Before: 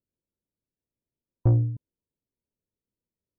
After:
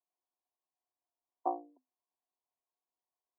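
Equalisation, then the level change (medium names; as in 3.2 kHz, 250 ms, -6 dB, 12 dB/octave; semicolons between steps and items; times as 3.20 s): cascade formant filter a; rippled Chebyshev high-pass 250 Hz, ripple 6 dB; +16.5 dB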